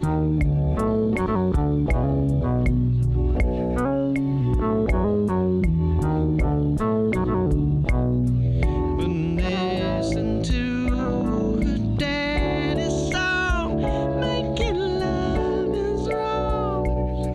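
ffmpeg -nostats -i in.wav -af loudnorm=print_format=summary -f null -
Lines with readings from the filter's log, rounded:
Input Integrated:    -23.0 LUFS
Input True Peak:     -11.0 dBTP
Input LRA:             2.1 LU
Input Threshold:     -33.0 LUFS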